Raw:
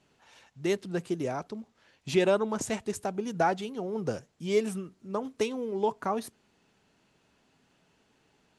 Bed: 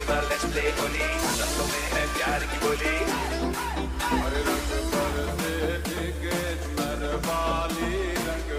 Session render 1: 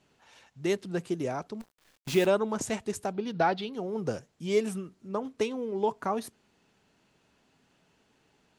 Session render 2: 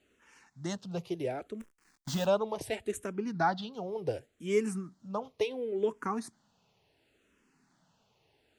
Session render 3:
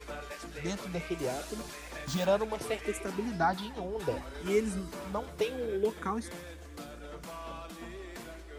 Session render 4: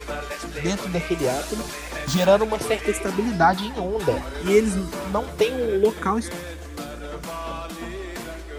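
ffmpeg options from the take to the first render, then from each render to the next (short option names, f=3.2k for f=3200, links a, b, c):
-filter_complex "[0:a]asplit=3[a][b][c];[a]afade=t=out:st=1.6:d=0.02[d];[b]acrusher=bits=7:dc=4:mix=0:aa=0.000001,afade=t=in:st=1.6:d=0.02,afade=t=out:st=2.25:d=0.02[e];[c]afade=t=in:st=2.25:d=0.02[f];[d][e][f]amix=inputs=3:normalize=0,asettb=1/sr,asplit=3[g][h][i];[g]atrim=end=3.134[j];[h]atrim=start=3.13:end=3.73,asetpts=PTS-STARTPTS,afade=t=in:d=0.004:c=qsin,afade=t=out:st=0.596:d=0.004:c=qsin,highshelf=f=5.6k:t=q:w=3:g=-10[k];[i]atrim=start=3.726[l];[j][k]acrossfade=d=0.004:c1=hsin:c2=qsin[m];[m][l]acrossfade=d=0.004:c1=qsin:c2=hsin,asettb=1/sr,asplit=3[n][o][p];[n]atrim=end=5.094[q];[o]atrim=start=5.09:end=5.88,asetpts=PTS-STARTPTS,afade=t=in:d=0.004:c=qsin,afade=t=out:st=0.786:d=0.004:c=qsin,highshelf=f=6.9k:g=-6.5[r];[p]atrim=start=5.876[s];[q][r]acrossfade=d=0.004:c1=hsin:c2=qsin[t];[t][s]acrossfade=d=0.004:c1=qsin:c2=hsin"
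-filter_complex "[0:a]asplit=2[a][b];[b]afreqshift=-0.7[c];[a][c]amix=inputs=2:normalize=1"
-filter_complex "[1:a]volume=-16.5dB[a];[0:a][a]amix=inputs=2:normalize=0"
-af "volume=11dB"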